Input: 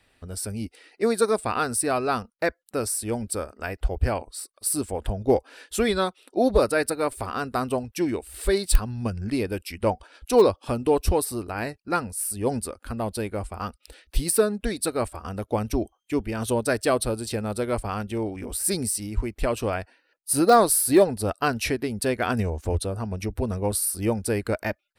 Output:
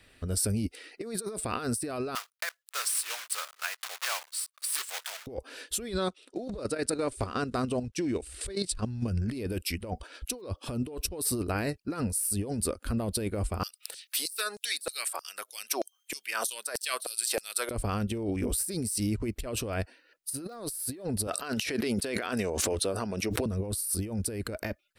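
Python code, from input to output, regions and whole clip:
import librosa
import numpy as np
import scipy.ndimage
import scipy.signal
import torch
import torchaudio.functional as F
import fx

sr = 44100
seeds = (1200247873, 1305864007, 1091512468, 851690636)

y = fx.chain(x, sr, fx.block_float(bits=3),
    fx.highpass(hz=1000.0, slope=24),
    fx.high_shelf(hz=4500.0, db=-3.5), at=(2.15, 5.27))
y = fx.chain(y, sr, fx.block_float(bits=7),
    fx.lowpass(hz=9000.0, slope=24),
    fx.level_steps(step_db=10), at=(5.94, 9.08))
y = fx.chain(y, sr, fx.highpass(hz=260.0, slope=12),
    fx.high_shelf(hz=7600.0, db=10.5),
    fx.filter_lfo_highpass(shape='saw_down', hz=3.2, low_hz=630.0, high_hz=6300.0, q=1.7), at=(13.63, 17.71))
y = fx.chain(y, sr, fx.weighting(curve='A'),
    fx.pre_swell(db_per_s=42.0), at=(21.27, 23.46))
y = fx.peak_eq(y, sr, hz=840.0, db=-7.0, octaves=0.66)
y = fx.over_compress(y, sr, threshold_db=-32.0, ratio=-1.0)
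y = fx.dynamic_eq(y, sr, hz=1700.0, q=0.87, threshold_db=-47.0, ratio=4.0, max_db=-4)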